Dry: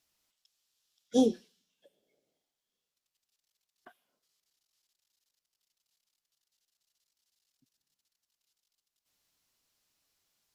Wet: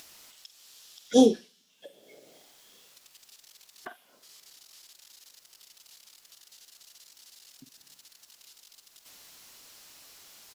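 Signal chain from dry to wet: bass shelf 190 Hz -9 dB; doubling 46 ms -13 dB; in parallel at 0 dB: upward compressor, threshold -37 dBFS; on the sum: trim +2.5 dB

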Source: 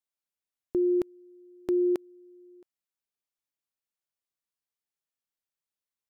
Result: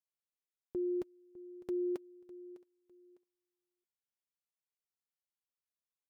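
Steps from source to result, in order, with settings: comb of notches 310 Hz; feedback delay 604 ms, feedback 27%, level -18 dB; trim -8.5 dB

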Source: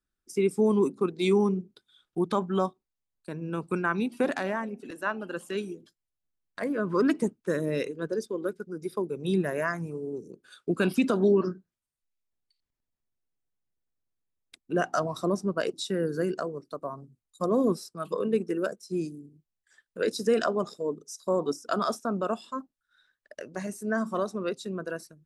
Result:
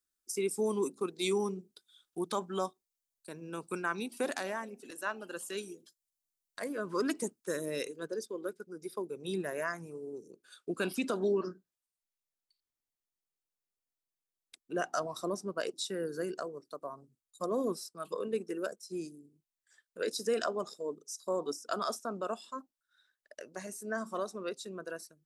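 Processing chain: tone controls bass -9 dB, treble +13 dB, from 8.05 s treble +6 dB; trim -6 dB

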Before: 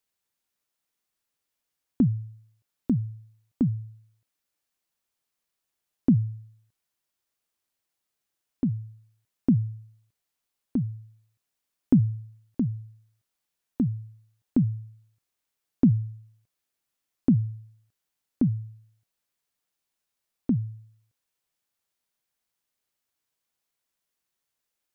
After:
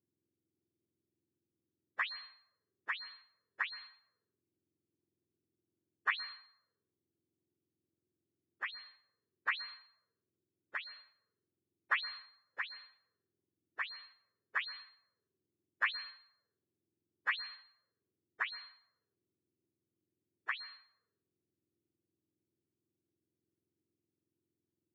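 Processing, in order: spectrum inverted on a logarithmic axis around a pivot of 680 Hz; auto-wah 340–1100 Hz, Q 6.3, up, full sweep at -35.5 dBFS; on a send: reverberation RT60 0.70 s, pre-delay 112 ms, DRR 17 dB; on the sum: trim +10.5 dB

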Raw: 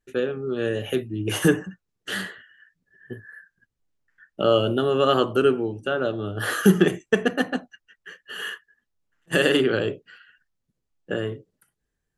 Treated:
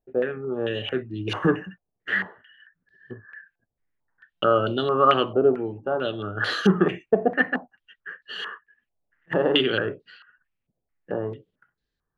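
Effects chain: buffer glitch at 3.54/4.37 s, samples 256, times 8; step-sequenced low-pass 4.5 Hz 700–4200 Hz; trim -3 dB

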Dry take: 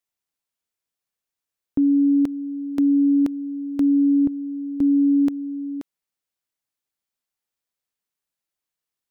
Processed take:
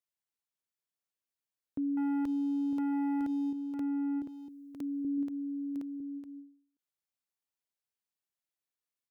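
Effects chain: high-pass 51 Hz; 1.97–3.53 s: waveshaping leveller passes 2; 4.22–5.05 s: tilt EQ +3 dB/octave; peak limiter -20 dBFS, peak gain reduction 7 dB; delay 955 ms -8 dB; endings held to a fixed fall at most 120 dB/s; trim -8.5 dB

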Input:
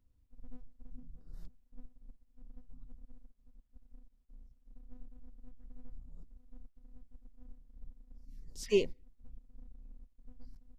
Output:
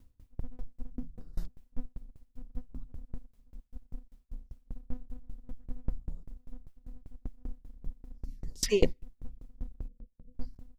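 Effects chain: 9.88–10.35 s: rippled Chebyshev low-pass 680 Hz, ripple 9 dB; sawtooth tremolo in dB decaying 5.1 Hz, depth 27 dB; trim +18 dB

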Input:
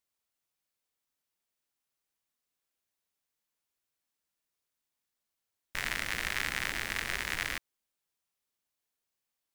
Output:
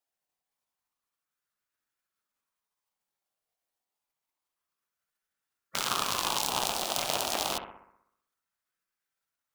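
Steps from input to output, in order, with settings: cycle switcher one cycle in 3, inverted; spectral gate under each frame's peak -10 dB weak; on a send: bucket-brigade echo 63 ms, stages 1024, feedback 56%, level -7 dB; on the sum: sweeping bell 0.28 Hz 700–1500 Hz +10 dB; trim +8 dB

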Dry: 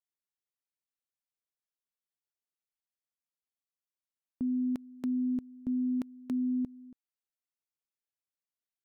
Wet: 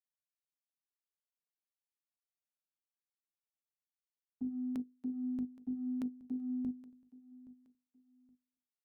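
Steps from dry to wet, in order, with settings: hum notches 50/100/150/200/250/300/350/400/450/500 Hz; gate -36 dBFS, range -21 dB; reverse; compression, threshold -46 dBFS, peak gain reduction 13 dB; reverse; feedback delay 821 ms, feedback 28%, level -19.5 dB; trim +9.5 dB

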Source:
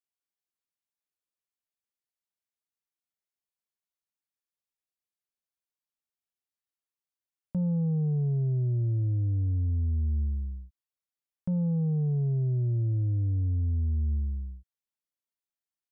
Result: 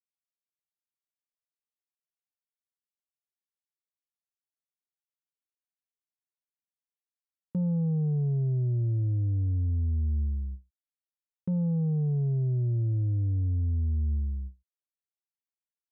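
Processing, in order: gate with hold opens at -29 dBFS

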